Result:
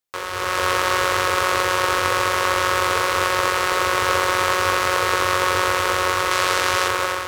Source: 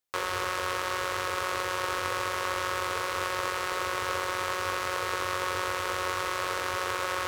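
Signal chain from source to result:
0:06.31–0:06.88: parametric band 5,200 Hz +4.5 dB 2.9 octaves
automatic gain control gain up to 11.5 dB
level +1 dB

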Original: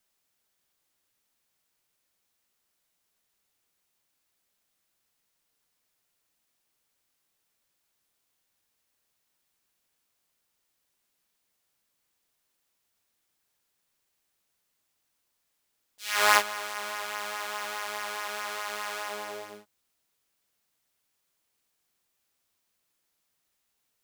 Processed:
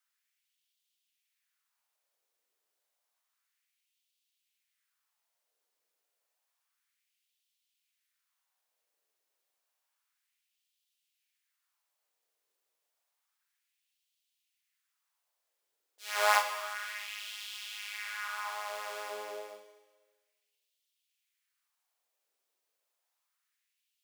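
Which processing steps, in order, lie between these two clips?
auto-filter high-pass sine 0.3 Hz 430–3,200 Hz
four-comb reverb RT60 1.3 s, combs from 31 ms, DRR 7.5 dB
level −7.5 dB

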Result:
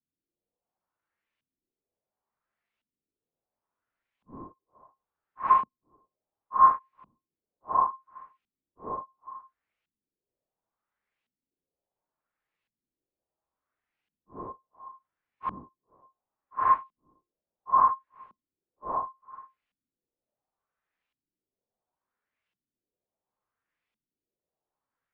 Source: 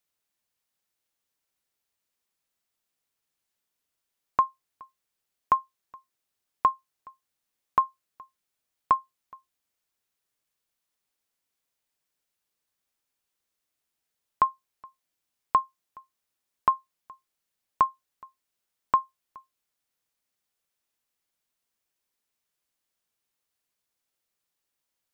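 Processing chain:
random phases in long frames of 200 ms
auto-filter low-pass saw up 0.71 Hz 210–2,800 Hz

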